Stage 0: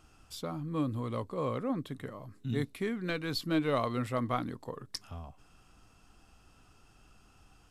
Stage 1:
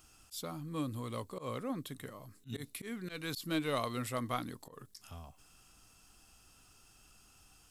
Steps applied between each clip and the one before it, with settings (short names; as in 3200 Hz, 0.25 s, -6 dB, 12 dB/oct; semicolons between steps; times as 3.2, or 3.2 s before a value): pre-emphasis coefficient 0.8; auto swell 0.111 s; gain +8.5 dB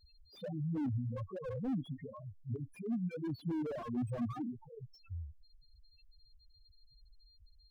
whine 4200 Hz -69 dBFS; loudest bins only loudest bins 2; slew limiter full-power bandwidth 2.2 Hz; gain +9 dB